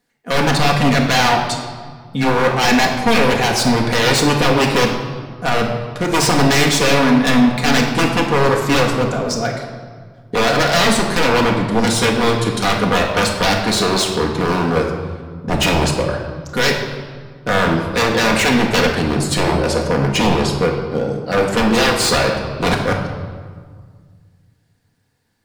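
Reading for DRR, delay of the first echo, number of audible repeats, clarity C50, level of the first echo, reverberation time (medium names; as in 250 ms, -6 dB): 0.0 dB, no echo, no echo, 4.5 dB, no echo, 1.8 s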